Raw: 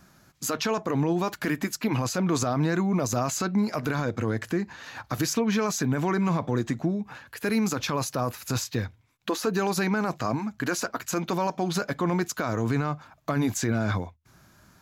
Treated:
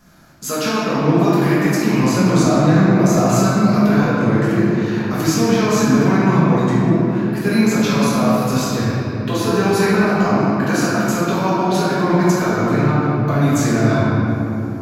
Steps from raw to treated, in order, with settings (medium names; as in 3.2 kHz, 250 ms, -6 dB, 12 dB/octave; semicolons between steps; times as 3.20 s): simulated room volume 180 m³, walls hard, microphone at 1.4 m